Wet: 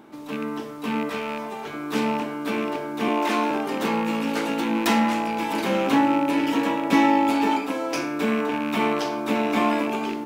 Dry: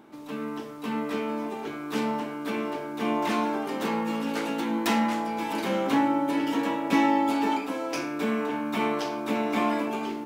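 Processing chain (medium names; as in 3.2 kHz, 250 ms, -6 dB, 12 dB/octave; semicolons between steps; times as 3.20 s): rattle on loud lows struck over -34 dBFS, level -27 dBFS; 1.09–1.74 s: peaking EQ 300 Hz -12 dB 0.77 oct; 3.08–3.51 s: steep high-pass 230 Hz; trim +4 dB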